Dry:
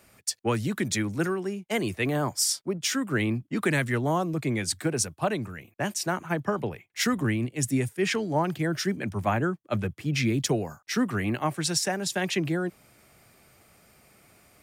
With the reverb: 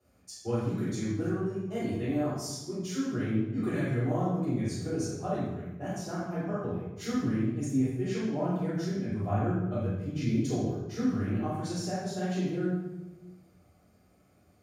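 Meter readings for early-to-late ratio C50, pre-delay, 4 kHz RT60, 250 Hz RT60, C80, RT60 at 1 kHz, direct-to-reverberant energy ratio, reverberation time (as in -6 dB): -1.0 dB, 3 ms, 0.75 s, 1.5 s, 2.5 dB, 1.0 s, -10.0 dB, 1.1 s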